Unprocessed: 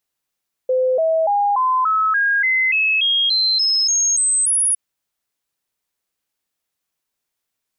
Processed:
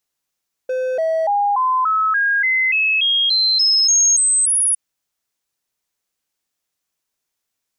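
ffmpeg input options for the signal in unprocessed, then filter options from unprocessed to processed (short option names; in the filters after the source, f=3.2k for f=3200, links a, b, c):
-f lavfi -i "aevalsrc='0.2*clip(min(mod(t,0.29),0.29-mod(t,0.29))/0.005,0,1)*sin(2*PI*513*pow(2,floor(t/0.29)/3)*mod(t,0.29))':d=4.06:s=44100"
-filter_complex "[0:a]acrossover=split=630|3400[a][b][c];[a]volume=25.5dB,asoftclip=hard,volume=-25.5dB[d];[d][b][c]amix=inputs=3:normalize=0,equalizer=f=6.2k:t=o:w=0.77:g=3.5"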